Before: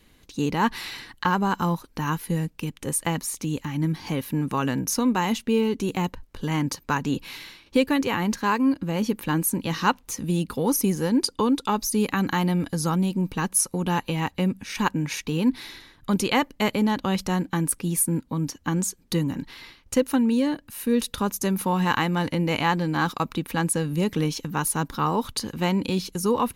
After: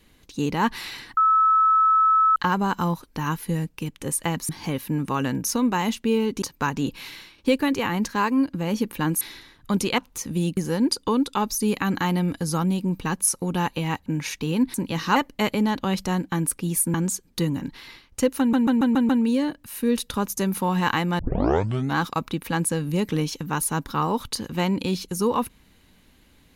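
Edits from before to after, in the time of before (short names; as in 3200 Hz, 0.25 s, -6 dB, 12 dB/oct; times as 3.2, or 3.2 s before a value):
1.17 add tone 1300 Hz -14.5 dBFS 1.19 s
3.3–3.92 cut
5.85–6.7 cut
9.49–9.91 swap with 15.6–16.37
10.5–10.89 cut
14.38–14.92 cut
18.15–18.68 cut
20.13 stutter 0.14 s, 6 plays
22.23 tape start 0.77 s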